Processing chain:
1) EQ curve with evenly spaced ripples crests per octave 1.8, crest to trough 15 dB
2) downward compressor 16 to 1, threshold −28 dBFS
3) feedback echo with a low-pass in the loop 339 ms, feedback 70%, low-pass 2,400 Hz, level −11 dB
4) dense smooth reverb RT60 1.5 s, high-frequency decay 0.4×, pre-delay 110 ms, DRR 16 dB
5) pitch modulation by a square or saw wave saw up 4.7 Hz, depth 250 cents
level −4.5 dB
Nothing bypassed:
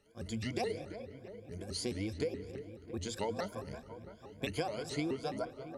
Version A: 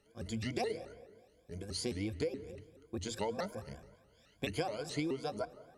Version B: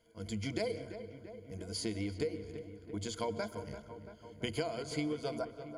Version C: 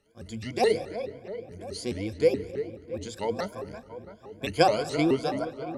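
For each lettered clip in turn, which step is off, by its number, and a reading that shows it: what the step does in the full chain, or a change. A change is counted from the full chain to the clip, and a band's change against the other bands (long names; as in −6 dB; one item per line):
3, change in momentary loudness spread +3 LU
5, 1 kHz band −2.5 dB
2, average gain reduction 5.5 dB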